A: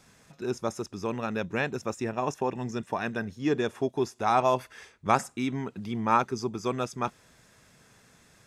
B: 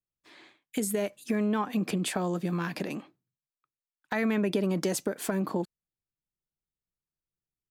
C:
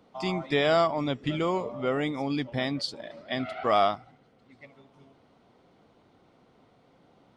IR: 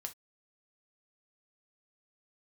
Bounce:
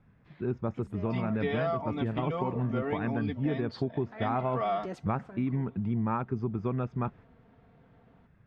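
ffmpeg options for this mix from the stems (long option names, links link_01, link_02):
-filter_complex "[0:a]agate=range=-7dB:threshold=-48dB:ratio=16:detection=peak,bass=frequency=250:gain=13,treble=frequency=4000:gain=-15,volume=-2.5dB,asplit=2[link_01][link_02];[1:a]volume=-7.5dB,asplit=2[link_03][link_04];[link_04]volume=-11dB[link_05];[2:a]aecho=1:1:4.4:0.88,adelay=900,volume=-5dB[link_06];[link_02]apad=whole_len=339912[link_07];[link_03][link_07]sidechaincompress=threshold=-42dB:ratio=8:attack=16:release=261[link_08];[3:a]atrim=start_sample=2205[link_09];[link_05][link_09]afir=irnorm=-1:irlink=0[link_10];[link_01][link_08][link_06][link_10]amix=inputs=4:normalize=0,lowpass=2400,acompressor=threshold=-26dB:ratio=6"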